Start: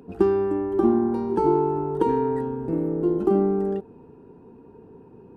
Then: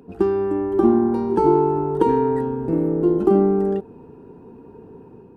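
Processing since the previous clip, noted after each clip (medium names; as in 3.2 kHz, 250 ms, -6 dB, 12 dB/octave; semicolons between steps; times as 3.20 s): level rider gain up to 5 dB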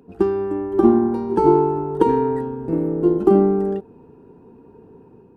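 upward expansion 1.5:1, over -25 dBFS; trim +3 dB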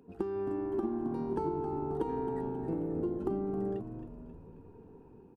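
compression 10:1, threshold -22 dBFS, peak gain reduction 14 dB; on a send: frequency-shifting echo 268 ms, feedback 56%, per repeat -76 Hz, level -10 dB; on the sum: trim -8.5 dB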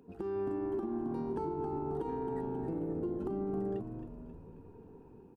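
peak limiter -28 dBFS, peak gain reduction 7 dB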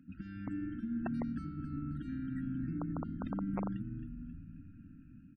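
brick-wall FIR band-stop 310–1300 Hz; integer overflow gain 31.5 dB; loudest bins only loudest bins 64; trim +3 dB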